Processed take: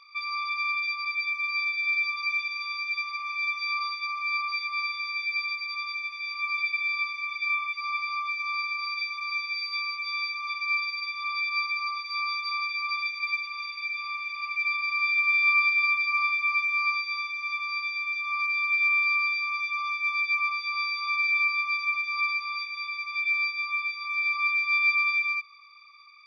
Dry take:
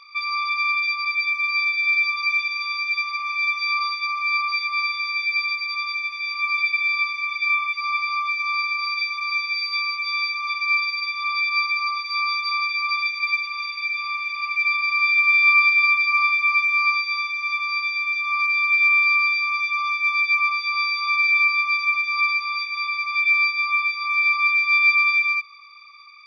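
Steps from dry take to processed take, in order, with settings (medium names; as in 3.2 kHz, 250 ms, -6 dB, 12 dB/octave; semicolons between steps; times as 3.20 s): 22.71–24.34 s: high-pass 1.5 kHz -> 1.3 kHz 6 dB/octave; trim -6.5 dB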